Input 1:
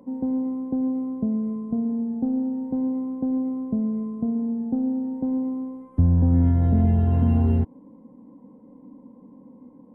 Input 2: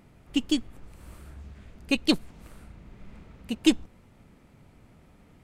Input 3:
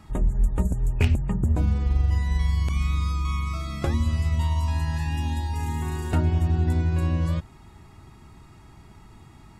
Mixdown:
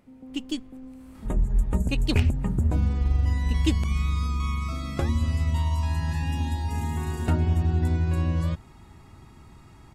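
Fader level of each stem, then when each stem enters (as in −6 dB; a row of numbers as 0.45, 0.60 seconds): −18.5, −5.5, −1.0 decibels; 0.00, 0.00, 1.15 seconds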